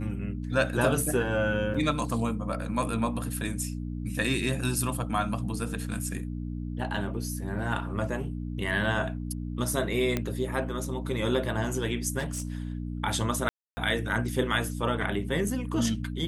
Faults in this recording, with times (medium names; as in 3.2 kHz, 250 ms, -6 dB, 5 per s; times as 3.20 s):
hum 60 Hz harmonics 5 -34 dBFS
1.74–1.75 s: dropout 5.3 ms
6.96 s: dropout 3.6 ms
10.17 s: pop -13 dBFS
12.18–12.75 s: clipped -27.5 dBFS
13.49–13.77 s: dropout 280 ms